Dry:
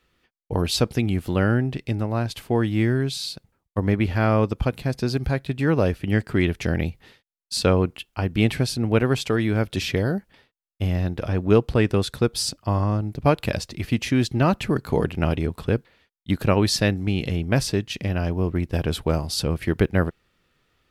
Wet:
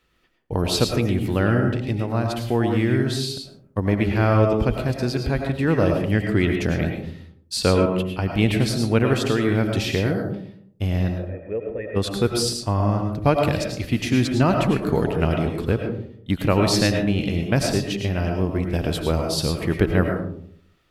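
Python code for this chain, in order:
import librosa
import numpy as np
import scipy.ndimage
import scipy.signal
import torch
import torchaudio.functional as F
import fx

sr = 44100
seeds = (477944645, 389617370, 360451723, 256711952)

p1 = fx.formant_cascade(x, sr, vowel='e', at=(11.16, 11.95), fade=0.02)
p2 = p1 + fx.echo_single(p1, sr, ms=113, db=-19.5, dry=0)
y = fx.rev_freeverb(p2, sr, rt60_s=0.62, hf_ratio=0.3, predelay_ms=65, drr_db=3.0)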